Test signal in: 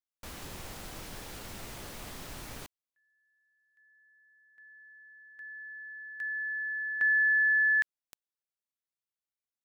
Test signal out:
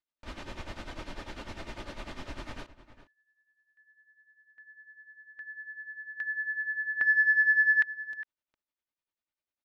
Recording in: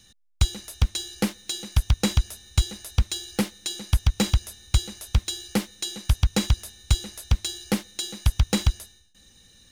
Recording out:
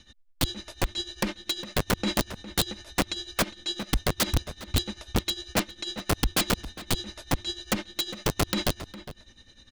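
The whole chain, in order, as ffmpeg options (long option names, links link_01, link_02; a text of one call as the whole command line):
ffmpeg -i in.wav -filter_complex "[0:a]lowpass=3600,aecho=1:1:3.3:0.43,asoftclip=type=tanh:threshold=-10.5dB,tremolo=f=10:d=0.76,aeval=exprs='(mod(13.3*val(0)+1,2)-1)/13.3':channel_layout=same,asplit=2[link_01][link_02];[link_02]adelay=408.2,volume=-14dB,highshelf=frequency=4000:gain=-9.18[link_03];[link_01][link_03]amix=inputs=2:normalize=0,volume=5.5dB" out.wav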